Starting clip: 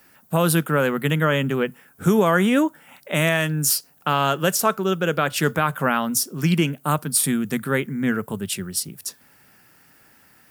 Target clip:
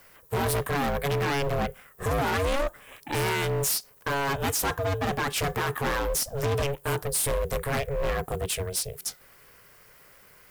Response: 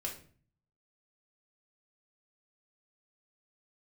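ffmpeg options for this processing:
-af "aeval=exprs='val(0)*sin(2*PI*280*n/s)':c=same,volume=26dB,asoftclip=hard,volume=-26dB,volume=3dB"

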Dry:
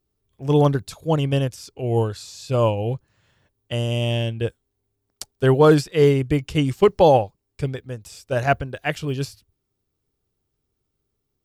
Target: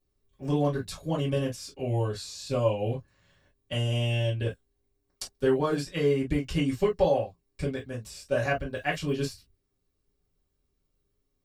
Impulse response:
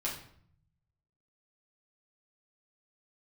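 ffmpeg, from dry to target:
-filter_complex "[0:a]acompressor=threshold=-21dB:ratio=4[a];[1:a]atrim=start_sample=2205,atrim=end_sample=4410,asetrate=79380,aresample=44100[b];[a][b]afir=irnorm=-1:irlink=0"

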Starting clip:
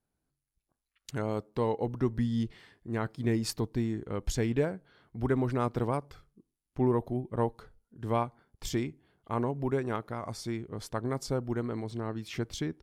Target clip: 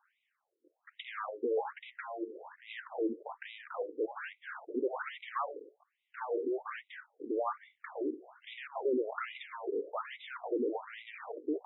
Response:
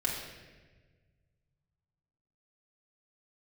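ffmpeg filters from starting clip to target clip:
-filter_complex "[0:a]lowpass=3.8k,asplit=2[a][b];[b]highpass=f=720:p=1,volume=39dB,asoftclip=type=tanh:threshold=-15dB[c];[a][c]amix=inputs=2:normalize=0,lowpass=f=1.5k:p=1,volume=-6dB,asoftclip=type=hard:threshold=-20dB,atempo=1.1,afftfilt=real='re*between(b*sr/1024,360*pow(2800/360,0.5+0.5*sin(2*PI*1.2*pts/sr))/1.41,360*pow(2800/360,0.5+0.5*sin(2*PI*1.2*pts/sr))*1.41)':imag='im*between(b*sr/1024,360*pow(2800/360,0.5+0.5*sin(2*PI*1.2*pts/sr))/1.41,360*pow(2800/360,0.5+0.5*sin(2*PI*1.2*pts/sr))*1.41)':win_size=1024:overlap=0.75,volume=-6dB"

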